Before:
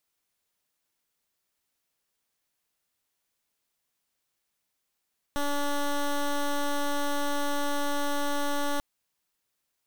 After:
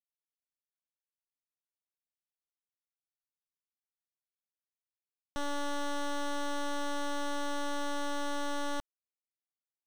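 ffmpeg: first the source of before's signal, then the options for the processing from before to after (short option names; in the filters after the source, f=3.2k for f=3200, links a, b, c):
-f lavfi -i "aevalsrc='0.0447*(2*lt(mod(287*t,1),0.12)-1)':d=3.44:s=44100"
-af "lowpass=8.6k,alimiter=level_in=7dB:limit=-24dB:level=0:latency=1,volume=-7dB,acrusher=bits=7:mix=0:aa=0.000001"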